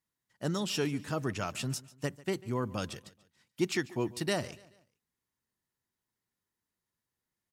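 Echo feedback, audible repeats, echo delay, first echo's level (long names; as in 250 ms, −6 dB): 43%, 2, 143 ms, −20.5 dB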